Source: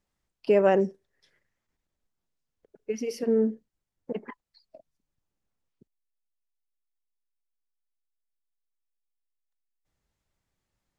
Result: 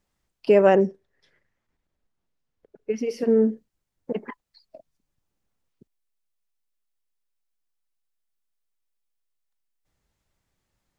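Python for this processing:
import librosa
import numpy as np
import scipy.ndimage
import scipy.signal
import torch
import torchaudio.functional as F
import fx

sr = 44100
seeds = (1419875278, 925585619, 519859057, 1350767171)

y = fx.lowpass(x, sr, hz=3100.0, slope=6, at=(0.75, 3.19))
y = y * 10.0 ** (4.5 / 20.0)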